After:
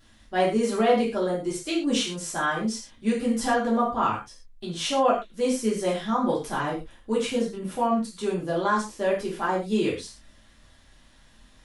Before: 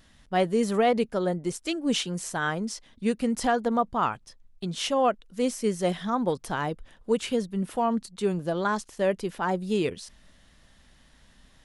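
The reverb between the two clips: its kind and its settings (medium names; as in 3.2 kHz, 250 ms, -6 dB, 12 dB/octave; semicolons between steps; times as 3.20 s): gated-style reverb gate 150 ms falling, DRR -5.5 dB; trim -4.5 dB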